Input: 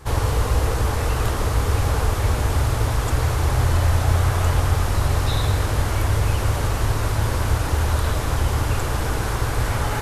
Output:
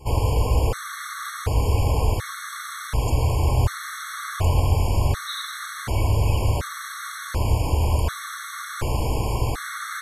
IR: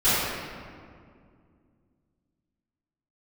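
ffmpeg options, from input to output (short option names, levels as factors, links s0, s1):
-af "afftfilt=real='re*gt(sin(2*PI*0.68*pts/sr)*(1-2*mod(floor(b*sr/1024/1100),2)),0)':imag='im*gt(sin(2*PI*0.68*pts/sr)*(1-2*mod(floor(b*sr/1024/1100),2)),0)':win_size=1024:overlap=0.75"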